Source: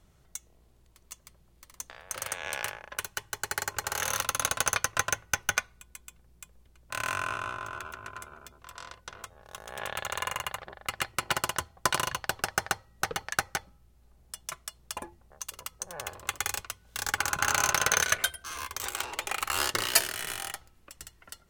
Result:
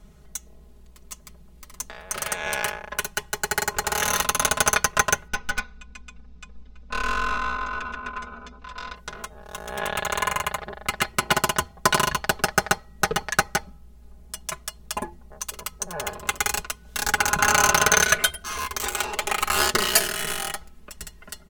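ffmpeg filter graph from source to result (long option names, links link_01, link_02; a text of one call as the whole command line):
ffmpeg -i in.wav -filter_complex "[0:a]asettb=1/sr,asplit=3[link_01][link_02][link_03];[link_01]atrim=end=5.284[link_04];[link_02]atrim=start=5.28:end=8.96,asetpts=PTS-STARTPTS,afade=type=in:duration=0.004:curve=qsin,afade=type=out:start_time=3.676:duration=0.004:curve=qsin,lowpass=frequency=5500:width=0.5412,lowpass=frequency=5500:width=1.3066,aecho=1:1:4:0.7,atrim=end_sample=162288,aeval=exprs='(tanh(28.2*val(0)+0.45)-tanh(0.45))/28.2':channel_layout=same[link_05];[link_03]atrim=start=8.956[link_06];[link_04][link_05]acrossfade=duration=0.004:curve1=hsin:curve2=qsin[link_07];[link_07][link_06]acrossfade=duration=0.004:curve1=qsin:curve2=hsin,lowshelf=frequency=450:gain=7,aecho=1:1:4.8:0.8,alimiter=level_in=5.5dB:limit=-1dB:release=50:level=0:latency=1,volume=-1dB" out.wav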